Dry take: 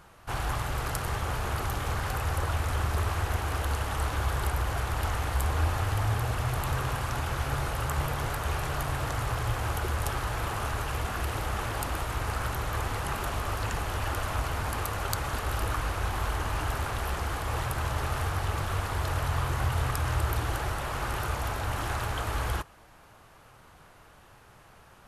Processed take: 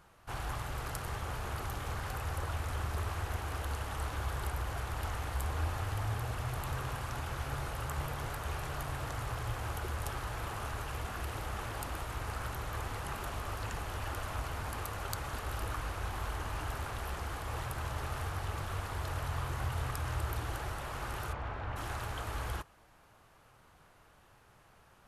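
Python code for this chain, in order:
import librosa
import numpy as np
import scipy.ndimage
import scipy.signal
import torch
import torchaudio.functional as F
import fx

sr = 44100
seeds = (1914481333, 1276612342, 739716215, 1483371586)

y = fx.lowpass(x, sr, hz=2500.0, slope=12, at=(21.32, 21.75), fade=0.02)
y = y * librosa.db_to_amplitude(-7.5)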